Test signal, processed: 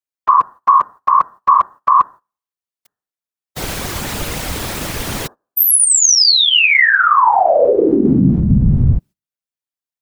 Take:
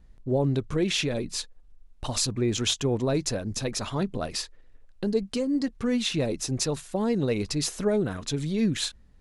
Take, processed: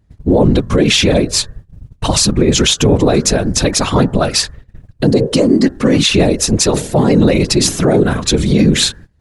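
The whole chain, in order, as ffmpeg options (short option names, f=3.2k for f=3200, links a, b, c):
-af "bandreject=f=150.3:t=h:w=4,bandreject=f=300.6:t=h:w=4,bandreject=f=450.9:t=h:w=4,bandreject=f=601.2:t=h:w=4,bandreject=f=751.5:t=h:w=4,bandreject=f=901.8:t=h:w=4,bandreject=f=1.0521k:t=h:w=4,bandreject=f=1.2024k:t=h:w=4,bandreject=f=1.3527k:t=h:w=4,bandreject=f=1.503k:t=h:w=4,bandreject=f=1.6533k:t=h:w=4,bandreject=f=1.8036k:t=h:w=4,agate=range=-18dB:threshold=-48dB:ratio=16:detection=peak,afftfilt=real='hypot(re,im)*cos(2*PI*random(0))':imag='hypot(re,im)*sin(2*PI*random(1))':win_size=512:overlap=0.75,alimiter=level_in=24.5dB:limit=-1dB:release=50:level=0:latency=1,volume=-1dB"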